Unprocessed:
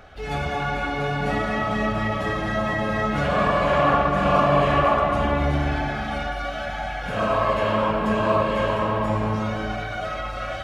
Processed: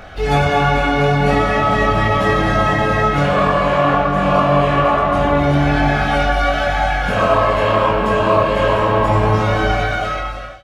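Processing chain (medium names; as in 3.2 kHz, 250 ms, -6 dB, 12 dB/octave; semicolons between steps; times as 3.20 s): fade out at the end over 0.79 s; doubling 21 ms -4 dB; gain riding within 4 dB 0.5 s; trim +6 dB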